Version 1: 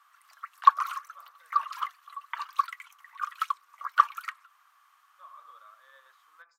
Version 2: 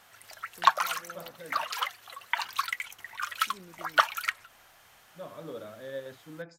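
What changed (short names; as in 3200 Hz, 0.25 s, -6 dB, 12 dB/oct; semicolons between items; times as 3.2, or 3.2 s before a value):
first voice +4.5 dB; master: remove ladder high-pass 1100 Hz, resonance 85%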